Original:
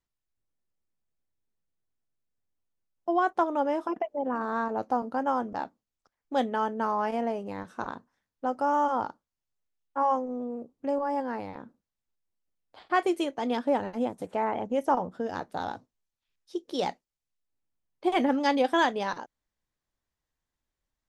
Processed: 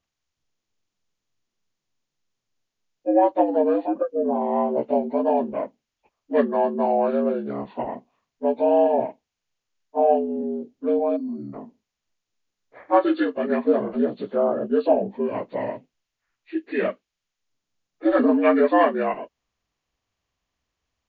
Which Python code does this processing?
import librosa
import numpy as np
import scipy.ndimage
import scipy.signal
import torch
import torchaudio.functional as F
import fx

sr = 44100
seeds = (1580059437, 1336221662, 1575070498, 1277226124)

y = fx.partial_stretch(x, sr, pct=75)
y = fx.spec_box(y, sr, start_s=11.16, length_s=0.37, low_hz=370.0, high_hz=4200.0, gain_db=-28)
y = y * librosa.db_to_amplitude(8.0)